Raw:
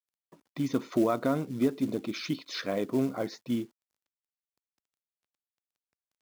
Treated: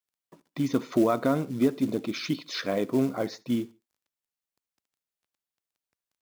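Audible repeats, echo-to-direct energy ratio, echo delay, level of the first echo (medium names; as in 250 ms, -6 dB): 2, -22.5 dB, 73 ms, -23.0 dB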